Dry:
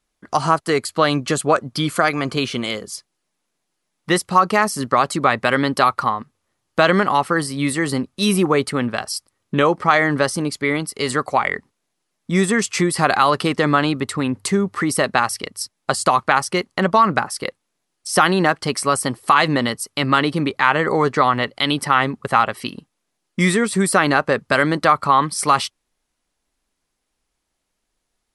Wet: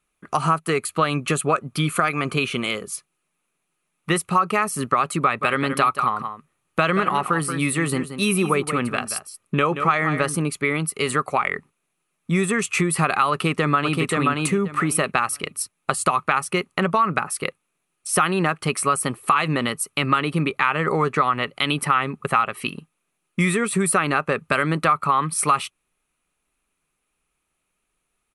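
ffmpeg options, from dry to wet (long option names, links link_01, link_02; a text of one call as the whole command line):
ffmpeg -i in.wav -filter_complex "[0:a]asettb=1/sr,asplit=3[link_01][link_02][link_03];[link_01]atrim=end=5.234[link_04];[link_02]atrim=start=5.23:end=10.36,asetpts=PTS-STARTPTS,afade=type=in:duration=0.004:curve=qsin,afade=type=out:start_time=5.126:duration=0.004:curve=qsin,aecho=1:1:178:0.266,atrim=end_sample=226233[link_05];[link_03]atrim=start=10.356[link_06];[link_04][link_05]acrossfade=duration=0.004:curve1=hsin:curve2=qsin[link_07];[link_07][link_06]acrossfade=duration=0.004:curve1=qsin:curve2=hsin,asplit=2[link_08][link_09];[link_09]afade=type=in:start_time=13.31:duration=0.01,afade=type=out:start_time=14:duration=0.01,aecho=0:1:530|1060|1590:0.707946|0.106192|0.0159288[link_10];[link_08][link_10]amix=inputs=2:normalize=0,equalizer=frequency=160:width_type=o:width=0.33:gain=8,equalizer=frequency=400:width_type=o:width=0.33:gain=4,equalizer=frequency=1250:width_type=o:width=0.33:gain=9,equalizer=frequency=2500:width_type=o:width=0.33:gain=11,equalizer=frequency=5000:width_type=o:width=0.33:gain=-9,equalizer=frequency=10000:width_type=o:width=0.33:gain=9,acompressor=threshold=-15dB:ratio=2.5,volume=-3dB" out.wav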